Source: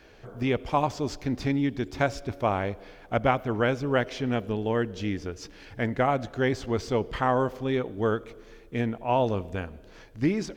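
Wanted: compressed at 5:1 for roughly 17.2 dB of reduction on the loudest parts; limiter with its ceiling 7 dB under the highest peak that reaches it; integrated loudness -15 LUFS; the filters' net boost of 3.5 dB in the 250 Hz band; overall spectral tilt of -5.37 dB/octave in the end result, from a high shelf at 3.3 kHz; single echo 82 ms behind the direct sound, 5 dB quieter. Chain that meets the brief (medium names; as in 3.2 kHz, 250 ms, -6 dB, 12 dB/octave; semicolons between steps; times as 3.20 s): peaking EQ 250 Hz +4 dB; treble shelf 3.3 kHz +8.5 dB; compression 5:1, threshold -38 dBFS; peak limiter -30.5 dBFS; delay 82 ms -5 dB; trim +26 dB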